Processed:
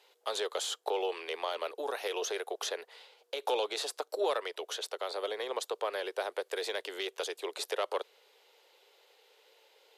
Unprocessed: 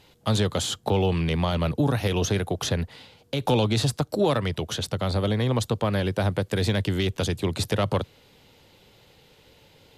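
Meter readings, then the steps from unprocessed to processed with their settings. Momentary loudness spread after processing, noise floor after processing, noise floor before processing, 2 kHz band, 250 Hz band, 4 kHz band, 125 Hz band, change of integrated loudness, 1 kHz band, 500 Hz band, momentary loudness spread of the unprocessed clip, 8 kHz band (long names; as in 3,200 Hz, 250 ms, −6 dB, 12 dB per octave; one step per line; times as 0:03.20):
6 LU, −70 dBFS, −57 dBFS, −6.5 dB, −22.5 dB, −7.0 dB, below −40 dB, −10.0 dB, −6.0 dB, −7.0 dB, 5 LU, −7.0 dB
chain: elliptic high-pass filter 410 Hz, stop band 60 dB
level −6 dB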